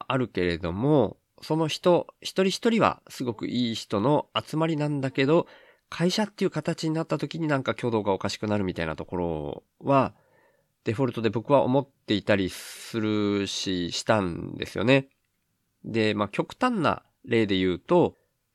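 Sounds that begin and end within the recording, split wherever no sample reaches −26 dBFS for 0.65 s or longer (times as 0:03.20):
0:10.86–0:15.00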